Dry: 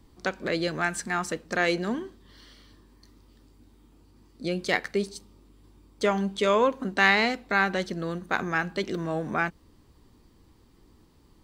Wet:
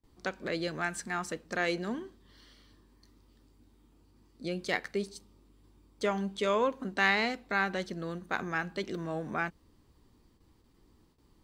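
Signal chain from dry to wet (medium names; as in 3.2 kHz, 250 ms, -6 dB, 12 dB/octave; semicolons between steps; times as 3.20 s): gate with hold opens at -49 dBFS; trim -6 dB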